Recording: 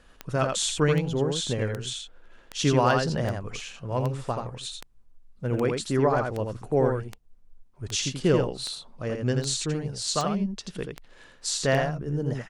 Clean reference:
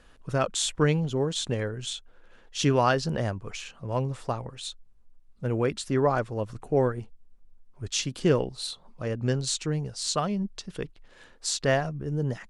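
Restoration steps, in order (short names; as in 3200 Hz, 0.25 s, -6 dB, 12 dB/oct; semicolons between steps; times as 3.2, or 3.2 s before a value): clip repair -10 dBFS; de-click; inverse comb 83 ms -4.5 dB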